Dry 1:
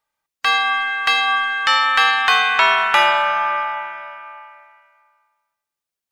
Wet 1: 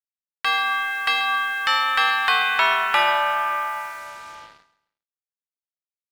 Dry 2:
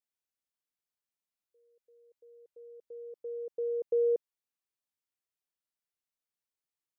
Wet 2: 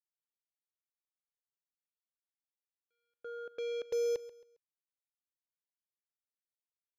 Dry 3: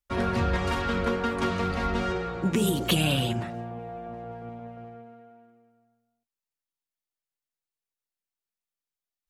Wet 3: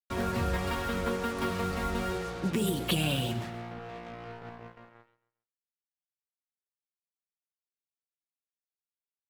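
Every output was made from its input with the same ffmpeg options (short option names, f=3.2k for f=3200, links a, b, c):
-af "bandreject=f=6.3k:w=5.1,acrusher=bits=5:mix=0:aa=0.5,aecho=1:1:135|270|405:0.15|0.0479|0.0153,volume=-4.5dB"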